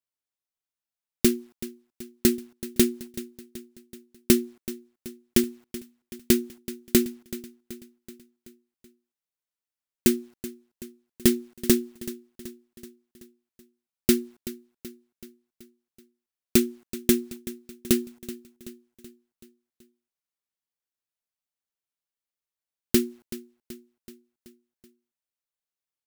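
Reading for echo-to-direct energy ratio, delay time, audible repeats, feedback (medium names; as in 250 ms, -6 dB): -14.5 dB, 379 ms, 4, 56%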